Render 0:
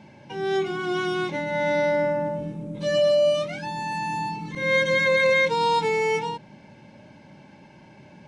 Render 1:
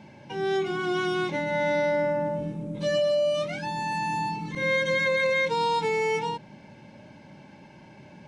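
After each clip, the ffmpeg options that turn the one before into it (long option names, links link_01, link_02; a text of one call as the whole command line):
ffmpeg -i in.wav -af "acompressor=threshold=-22dB:ratio=4" out.wav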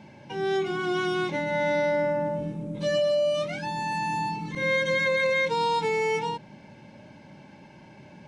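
ffmpeg -i in.wav -af anull out.wav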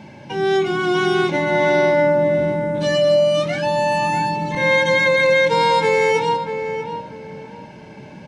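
ffmpeg -i in.wav -filter_complex "[0:a]asplit=2[link_01][link_02];[link_02]adelay=641,lowpass=frequency=1800:poles=1,volume=-7dB,asplit=2[link_03][link_04];[link_04]adelay=641,lowpass=frequency=1800:poles=1,volume=0.28,asplit=2[link_05][link_06];[link_06]adelay=641,lowpass=frequency=1800:poles=1,volume=0.28[link_07];[link_01][link_03][link_05][link_07]amix=inputs=4:normalize=0,volume=8.5dB" out.wav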